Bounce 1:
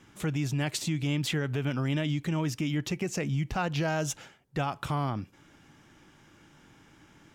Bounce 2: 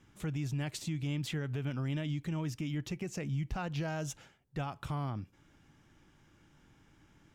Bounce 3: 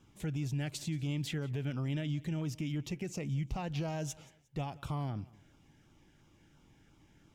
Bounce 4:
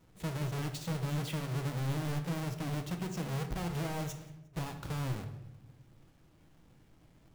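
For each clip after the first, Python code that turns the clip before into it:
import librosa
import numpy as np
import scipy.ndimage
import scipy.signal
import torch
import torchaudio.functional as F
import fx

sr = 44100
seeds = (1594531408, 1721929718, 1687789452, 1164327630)

y1 = fx.low_shelf(x, sr, hz=110.0, db=11.0)
y1 = y1 * 10.0 ** (-9.0 / 20.0)
y2 = fx.filter_lfo_notch(y1, sr, shape='saw_down', hz=2.9, low_hz=940.0, high_hz=2000.0, q=2.2)
y2 = fx.echo_feedback(y2, sr, ms=178, feedback_pct=32, wet_db=-22.0)
y3 = fx.halfwave_hold(y2, sr)
y3 = fx.room_shoebox(y3, sr, seeds[0], volume_m3=390.0, walls='mixed', distance_m=0.61)
y3 = y3 * 10.0 ** (-5.5 / 20.0)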